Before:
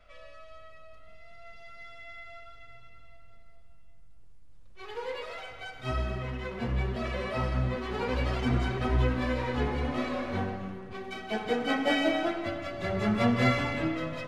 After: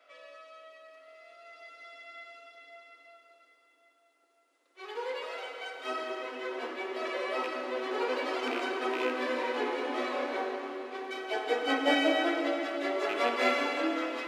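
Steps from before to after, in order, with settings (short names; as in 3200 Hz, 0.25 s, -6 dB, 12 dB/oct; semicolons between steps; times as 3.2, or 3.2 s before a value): rattling part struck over -23 dBFS, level -24 dBFS; steep high-pass 270 Hz 96 dB/oct; plate-style reverb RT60 5 s, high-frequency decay 0.9×, DRR 5 dB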